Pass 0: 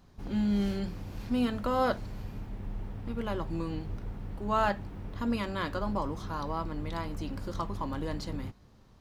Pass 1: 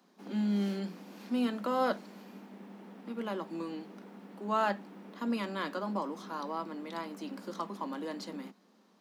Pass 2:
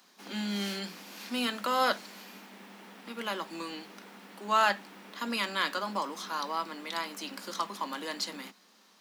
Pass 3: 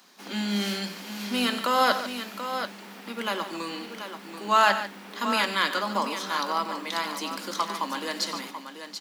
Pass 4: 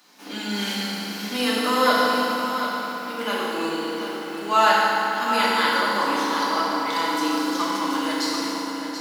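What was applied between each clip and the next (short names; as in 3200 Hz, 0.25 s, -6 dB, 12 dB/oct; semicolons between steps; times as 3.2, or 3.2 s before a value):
steep high-pass 180 Hz 96 dB/oct; gain -2 dB
tilt shelf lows -9.5 dB, about 940 Hz; gain +4 dB
tapped delay 92/145/734 ms -14.5/-12/-9 dB; gain +5 dB
FDN reverb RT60 3.5 s, high-frequency decay 0.65×, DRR -7 dB; gain -2.5 dB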